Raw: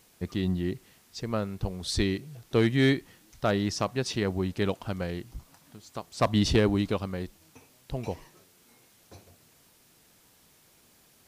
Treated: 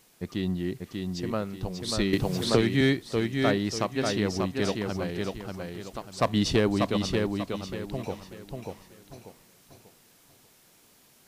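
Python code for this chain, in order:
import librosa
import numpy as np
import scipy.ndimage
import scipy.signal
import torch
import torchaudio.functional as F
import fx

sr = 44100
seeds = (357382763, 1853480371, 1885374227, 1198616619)

y = fx.peak_eq(x, sr, hz=63.0, db=-12.5, octaves=0.78)
y = fx.echo_feedback(y, sr, ms=590, feedback_pct=33, wet_db=-4.0)
y = fx.band_squash(y, sr, depth_pct=100, at=(2.13, 2.81))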